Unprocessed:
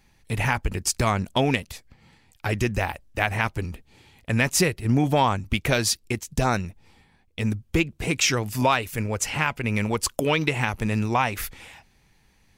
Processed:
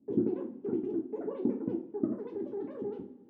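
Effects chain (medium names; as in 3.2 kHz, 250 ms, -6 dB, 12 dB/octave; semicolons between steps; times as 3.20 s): spectral sustain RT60 0.57 s; wide varispeed 3.81×; Butterworth band-pass 250 Hz, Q 2.2; two-slope reverb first 0.34 s, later 1.7 s, from -19 dB, DRR 0.5 dB; trim +4.5 dB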